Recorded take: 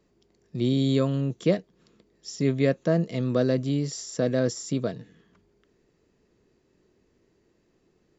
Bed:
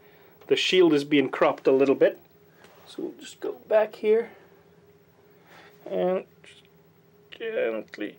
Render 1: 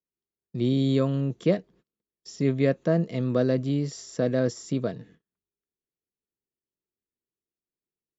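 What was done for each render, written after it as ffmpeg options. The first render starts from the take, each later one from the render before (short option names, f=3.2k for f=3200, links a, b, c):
-af "agate=range=-33dB:threshold=-52dB:ratio=16:detection=peak,highshelf=f=5k:g=-8.5"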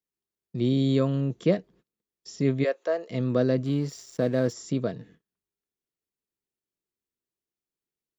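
-filter_complex "[0:a]asplit=3[a][b][c];[a]afade=t=out:st=2.63:d=0.02[d];[b]highpass=f=450:w=0.5412,highpass=f=450:w=1.3066,afade=t=in:st=2.63:d=0.02,afade=t=out:st=3.09:d=0.02[e];[c]afade=t=in:st=3.09:d=0.02[f];[d][e][f]amix=inputs=3:normalize=0,asplit=3[g][h][i];[g]afade=t=out:st=3.64:d=0.02[j];[h]aeval=exprs='sgn(val(0))*max(abs(val(0))-0.00355,0)':c=same,afade=t=in:st=3.64:d=0.02,afade=t=out:st=4.52:d=0.02[k];[i]afade=t=in:st=4.52:d=0.02[l];[j][k][l]amix=inputs=3:normalize=0"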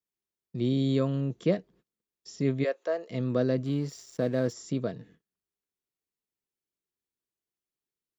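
-af "volume=-3dB"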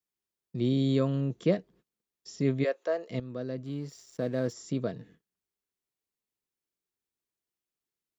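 -filter_complex "[0:a]asplit=2[a][b];[a]atrim=end=3.2,asetpts=PTS-STARTPTS,afade=t=out:st=3.196:d=0.004:c=hsin:silence=0.223872[c];[b]atrim=start=3.2,asetpts=PTS-STARTPTS,afade=t=in:d=1.79:silence=0.223872[d];[c][d]concat=n=2:v=0:a=1"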